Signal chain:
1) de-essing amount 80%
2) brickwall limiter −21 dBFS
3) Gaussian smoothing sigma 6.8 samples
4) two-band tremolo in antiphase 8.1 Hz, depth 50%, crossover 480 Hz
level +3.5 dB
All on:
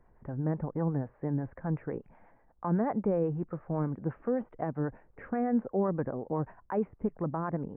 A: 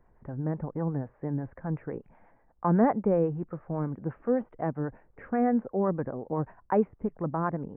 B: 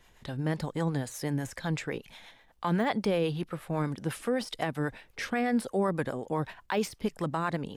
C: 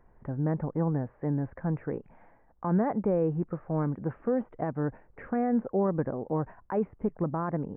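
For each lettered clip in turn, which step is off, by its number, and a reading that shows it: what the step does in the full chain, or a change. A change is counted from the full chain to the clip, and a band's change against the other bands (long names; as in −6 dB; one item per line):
2, change in crest factor +4.5 dB
3, 2 kHz band +12.0 dB
4, change in crest factor −2.0 dB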